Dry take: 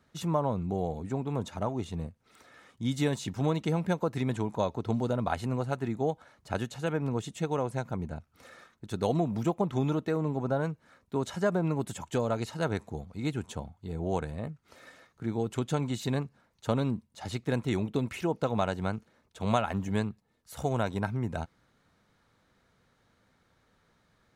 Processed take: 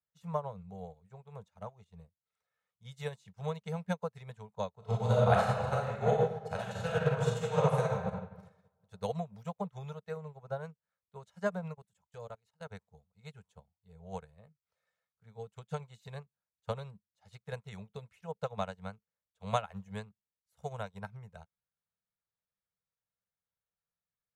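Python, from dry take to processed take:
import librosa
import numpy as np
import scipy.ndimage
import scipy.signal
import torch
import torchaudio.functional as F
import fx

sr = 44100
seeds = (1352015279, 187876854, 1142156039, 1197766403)

y = fx.reverb_throw(x, sr, start_s=4.76, length_s=3.3, rt60_s=2.3, drr_db=-6.5)
y = fx.level_steps(y, sr, step_db=15, at=(11.73, 12.7), fade=0.02)
y = scipy.signal.sosfilt(scipy.signal.cheby1(3, 1.0, [200.0, 440.0], 'bandstop', fs=sr, output='sos'), y)
y = fx.upward_expand(y, sr, threshold_db=-44.0, expansion=2.5)
y = y * librosa.db_to_amplitude(1.5)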